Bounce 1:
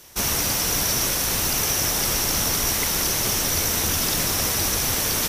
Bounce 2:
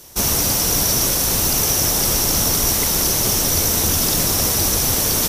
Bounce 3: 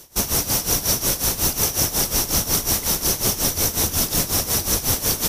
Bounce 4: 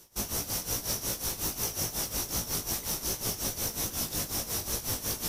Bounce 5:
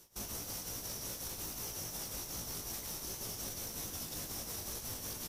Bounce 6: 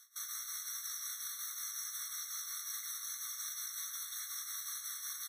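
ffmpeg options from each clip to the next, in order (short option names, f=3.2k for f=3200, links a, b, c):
-af "equalizer=f=2k:t=o:w=1.9:g=-7,volume=6dB"
-af "tremolo=f=5.5:d=0.8"
-af "areverse,acompressor=mode=upward:threshold=-23dB:ratio=2.5,areverse,flanger=delay=17:depth=2.8:speed=2.5,volume=-8.5dB"
-af "aecho=1:1:103:0.168,alimiter=level_in=3dB:limit=-24dB:level=0:latency=1:release=31,volume=-3dB,volume=-5dB"
-af "afftfilt=real='re*eq(mod(floor(b*sr/1024/1100),2),1)':imag='im*eq(mod(floor(b*sr/1024/1100),2),1)':win_size=1024:overlap=0.75,volume=3dB"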